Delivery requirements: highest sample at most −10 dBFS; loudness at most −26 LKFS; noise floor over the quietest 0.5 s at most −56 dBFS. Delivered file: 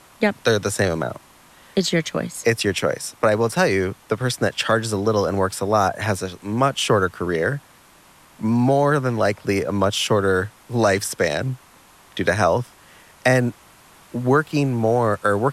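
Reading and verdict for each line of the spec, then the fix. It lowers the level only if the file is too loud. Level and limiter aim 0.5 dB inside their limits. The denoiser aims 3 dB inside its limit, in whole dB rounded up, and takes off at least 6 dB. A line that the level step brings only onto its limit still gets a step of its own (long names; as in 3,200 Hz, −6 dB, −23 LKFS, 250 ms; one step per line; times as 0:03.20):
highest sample −5.5 dBFS: out of spec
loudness −21.0 LKFS: out of spec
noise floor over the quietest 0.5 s −51 dBFS: out of spec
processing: level −5.5 dB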